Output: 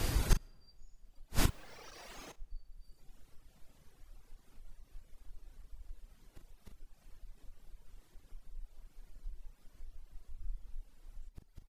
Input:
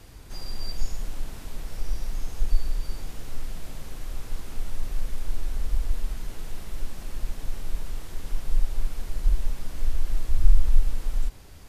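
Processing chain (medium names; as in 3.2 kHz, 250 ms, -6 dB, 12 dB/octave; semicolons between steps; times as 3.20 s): echo that smears into a reverb 482 ms, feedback 46%, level -15 dB; in parallel at 0 dB: compression 6:1, threshold -25 dBFS, peak gain reduction 17 dB; 1.46–2.32 s: on the sum: overdrive pedal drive 46 dB, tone 2.6 kHz, clips at -10.5 dBFS; inverted gate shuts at -21 dBFS, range -35 dB; doubling 39 ms -7.5 dB; on a send at -20 dB: reverberation RT60 1.4 s, pre-delay 70 ms; on the sum: reverb removal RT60 1.7 s; trim +8.5 dB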